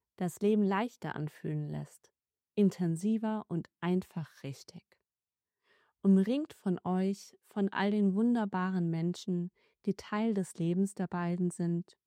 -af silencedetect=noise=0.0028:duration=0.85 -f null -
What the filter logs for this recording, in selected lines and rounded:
silence_start: 4.93
silence_end: 6.04 | silence_duration: 1.12